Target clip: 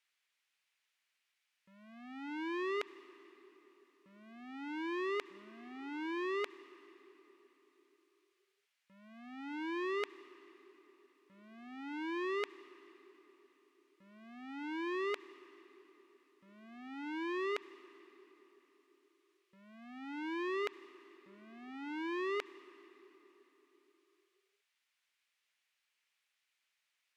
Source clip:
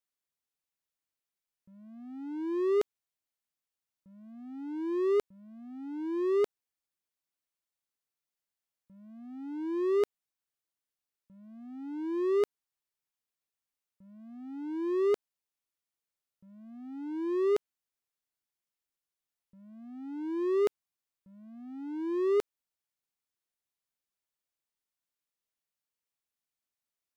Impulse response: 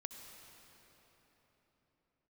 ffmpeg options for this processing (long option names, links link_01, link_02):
-filter_complex "[0:a]acompressor=threshold=-33dB:ratio=6,bandpass=frequency=2300:width_type=q:width=1.6:csg=0,asplit=2[link_01][link_02];[1:a]atrim=start_sample=2205,highshelf=frequency=3800:gain=11[link_03];[link_02][link_03]afir=irnorm=-1:irlink=0,volume=-7.5dB[link_04];[link_01][link_04]amix=inputs=2:normalize=0,volume=14.5dB"